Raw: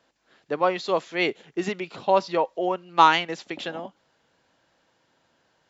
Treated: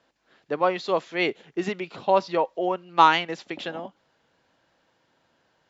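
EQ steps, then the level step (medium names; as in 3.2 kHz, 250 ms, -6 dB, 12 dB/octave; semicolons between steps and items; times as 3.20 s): distance through air 52 m; 0.0 dB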